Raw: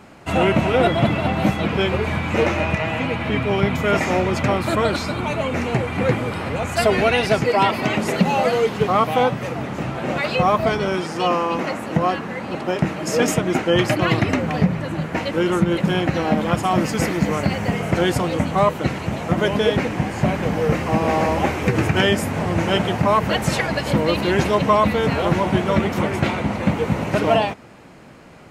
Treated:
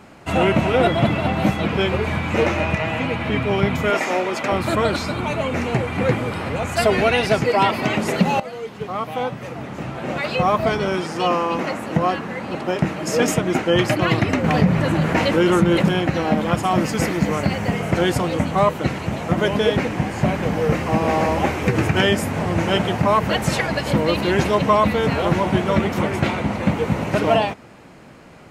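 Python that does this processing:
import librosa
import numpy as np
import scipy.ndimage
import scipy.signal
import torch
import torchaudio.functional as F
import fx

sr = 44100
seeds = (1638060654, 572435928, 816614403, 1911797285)

y = fx.highpass(x, sr, hz=330.0, slope=12, at=(3.9, 4.52))
y = fx.env_flatten(y, sr, amount_pct=50, at=(14.44, 15.89))
y = fx.edit(y, sr, fx.fade_in_from(start_s=8.4, length_s=2.37, floor_db=-15.5), tone=tone)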